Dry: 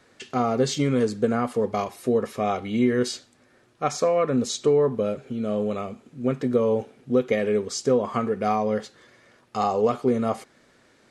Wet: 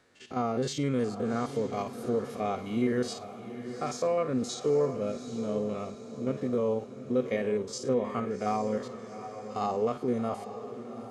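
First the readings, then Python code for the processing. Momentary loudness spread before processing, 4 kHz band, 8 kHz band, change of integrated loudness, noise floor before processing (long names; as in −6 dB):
8 LU, −7.5 dB, −7.5 dB, −7.0 dB, −60 dBFS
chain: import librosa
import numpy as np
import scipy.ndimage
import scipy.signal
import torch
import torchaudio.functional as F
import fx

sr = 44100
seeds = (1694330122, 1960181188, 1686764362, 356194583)

y = fx.spec_steps(x, sr, hold_ms=50)
y = fx.echo_diffused(y, sr, ms=781, feedback_pct=47, wet_db=-11.0)
y = y * 10.0 ** (-6.0 / 20.0)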